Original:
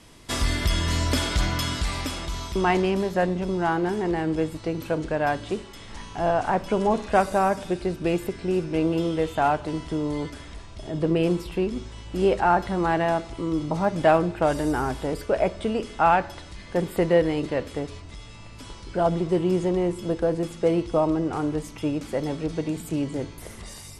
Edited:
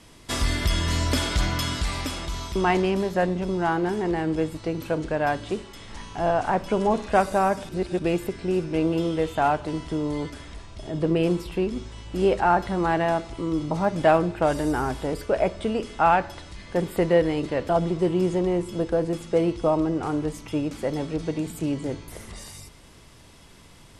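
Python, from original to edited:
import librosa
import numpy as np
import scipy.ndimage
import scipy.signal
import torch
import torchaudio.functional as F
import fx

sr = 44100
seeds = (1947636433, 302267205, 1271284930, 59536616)

y = fx.edit(x, sr, fx.reverse_span(start_s=7.69, length_s=0.3),
    fx.cut(start_s=17.69, length_s=1.3), tone=tone)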